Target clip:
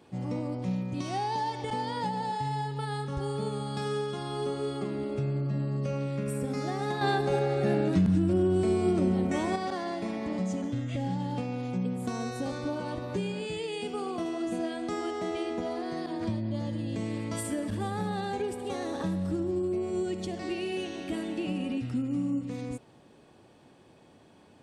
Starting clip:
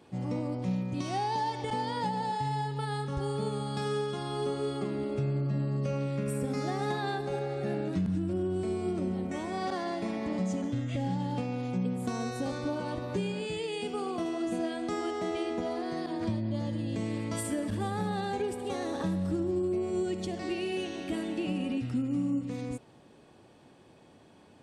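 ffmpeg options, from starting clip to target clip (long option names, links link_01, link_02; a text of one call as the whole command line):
ffmpeg -i in.wav -filter_complex "[0:a]asettb=1/sr,asplit=3[link_01][link_02][link_03];[link_01]atrim=end=7.014[link_04];[link_02]atrim=start=7.01:end=9.56,asetpts=PTS-STARTPTS,afade=type=in:duration=0.004:curve=qsin,afade=type=out:start_time=2.546:duration=0.004:curve=qsin,acontrast=56[link_05];[link_03]atrim=start=9.556[link_06];[link_04][link_05]acrossfade=duration=0.004:curve1=hsin:curve2=qsin[link_07];[link_07][link_06]acrossfade=duration=0.004:curve1=qsin:curve2=hsin" out.wav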